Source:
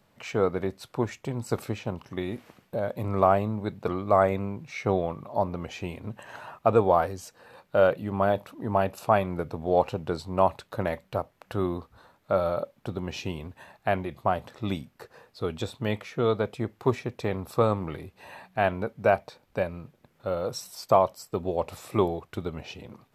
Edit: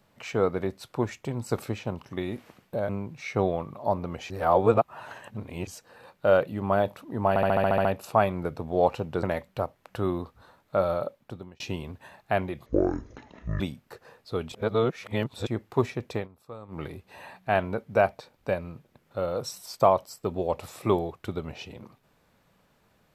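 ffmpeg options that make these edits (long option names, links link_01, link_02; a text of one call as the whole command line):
ffmpeg -i in.wav -filter_complex "[0:a]asplit=20[link_01][link_02][link_03][link_04][link_05][link_06][link_07][link_08][link_09][link_10][link_11][link_12][link_13][link_14][link_15][link_16][link_17][link_18][link_19][link_20];[link_01]atrim=end=2.892[link_21];[link_02]atrim=start=4.388:end=5.802[link_22];[link_03]atrim=start=5.798:end=7.172,asetpts=PTS-STARTPTS,areverse[link_23];[link_04]atrim=start=7.168:end=8.862[link_24];[link_05]atrim=start=8.788:end=8.862[link_25];[link_06]atrim=start=8.788:end=8.862[link_26];[link_07]atrim=start=8.788:end=8.862[link_27];[link_08]atrim=start=8.788:end=8.862[link_28];[link_09]atrim=start=8.788:end=8.862[link_29];[link_10]atrim=start=8.788:end=8.862[link_30];[link_11]atrim=start=8.788:end=8.862[link_31];[link_12]atrim=start=8.788:end=10.172[link_32];[link_13]atrim=start=10.788:end=13.16,asetpts=PTS-STARTPTS,afade=type=out:start_time=1.572:duration=0.8:curve=qsin[link_33];[link_14]atrim=start=13.16:end=14.224,asetpts=PTS-STARTPTS,afade=type=in:duration=0.004:curve=hsin[link_34];[link_15]atrim=start=14.22:end=14.69,asetpts=PTS-STARTPTS,asetrate=22050,aresample=44100[link_35];[link_16]atrim=start=14.686:end=15.612[link_36];[link_17]atrim=start=15.608:end=16.562,asetpts=PTS-STARTPTS,areverse[link_37];[link_18]atrim=start=16.558:end=17.37,asetpts=PTS-STARTPTS,afade=type=out:start_time=0.682:duration=0.13:silence=0.105925[link_38];[link_19]atrim=start=17.37:end=17.77,asetpts=PTS-STARTPTS,volume=-19.5dB[link_39];[link_20]atrim=start=17.77,asetpts=PTS-STARTPTS,afade=type=in:duration=0.13:silence=0.105925[link_40];[link_21][link_22]acrossfade=duration=0.004:curve1=hsin:curve2=hsin[link_41];[link_41][link_23]acrossfade=duration=0.004:curve1=hsin:curve2=hsin[link_42];[link_42][link_24]acrossfade=duration=0.004:curve1=hsin:curve2=hsin[link_43];[link_43][link_25]acrossfade=duration=0.004:curve1=hsin:curve2=hsin[link_44];[link_44][link_26]acrossfade=duration=0.004:curve1=hsin:curve2=hsin[link_45];[link_45][link_27]acrossfade=duration=0.004:curve1=hsin:curve2=hsin[link_46];[link_46][link_28]acrossfade=duration=0.004:curve1=hsin:curve2=hsin[link_47];[link_47][link_29]acrossfade=duration=0.004:curve1=hsin:curve2=hsin[link_48];[link_48][link_30]acrossfade=duration=0.004:curve1=hsin:curve2=hsin[link_49];[link_49][link_31]acrossfade=duration=0.004:curve1=hsin:curve2=hsin[link_50];[link_50][link_32]acrossfade=duration=0.004:curve1=hsin:curve2=hsin[link_51];[link_33][link_34]concat=n=2:v=0:a=1[link_52];[link_51][link_52]acrossfade=duration=0.004:curve1=hsin:curve2=hsin[link_53];[link_53][link_35]acrossfade=duration=0.004:curve1=hsin:curve2=hsin[link_54];[link_54][link_36]acrossfade=duration=0.004:curve1=hsin:curve2=hsin[link_55];[link_55][link_37]acrossfade=duration=0.004:curve1=hsin:curve2=hsin[link_56];[link_38][link_39][link_40]concat=n=3:v=0:a=1[link_57];[link_56][link_57]acrossfade=duration=0.004:curve1=hsin:curve2=hsin" out.wav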